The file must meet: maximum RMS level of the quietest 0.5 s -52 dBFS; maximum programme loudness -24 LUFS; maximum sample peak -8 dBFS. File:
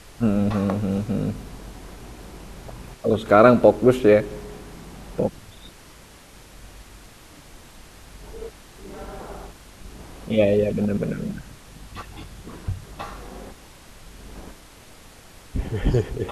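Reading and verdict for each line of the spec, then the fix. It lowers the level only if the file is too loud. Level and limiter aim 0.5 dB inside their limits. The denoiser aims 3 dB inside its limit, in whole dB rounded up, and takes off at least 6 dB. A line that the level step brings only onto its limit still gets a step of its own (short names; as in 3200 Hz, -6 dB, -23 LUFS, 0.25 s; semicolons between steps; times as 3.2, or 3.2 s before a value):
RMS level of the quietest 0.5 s -47 dBFS: fail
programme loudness -21.0 LUFS: fail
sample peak -2.0 dBFS: fail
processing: denoiser 6 dB, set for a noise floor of -47 dBFS; gain -3.5 dB; limiter -8.5 dBFS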